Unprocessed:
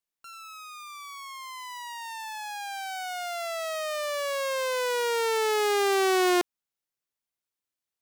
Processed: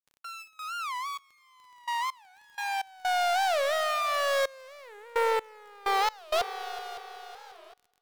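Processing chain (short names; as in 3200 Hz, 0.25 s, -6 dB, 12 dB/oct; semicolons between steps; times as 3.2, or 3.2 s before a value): minimum comb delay 4.2 ms; gate with hold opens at -41 dBFS; steep high-pass 470 Hz 48 dB/oct; high shelf 3800 Hz -10 dB; limiter -25.5 dBFS, peak gain reduction 3.5 dB; sine folder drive 4 dB, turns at -25 dBFS; multi-head echo 0.187 s, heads second and third, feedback 49%, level -16 dB; step gate "xxxxx...x..x.x" 64 bpm -24 dB; crackle 21/s -50 dBFS; record warp 45 rpm, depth 250 cents; gain +3 dB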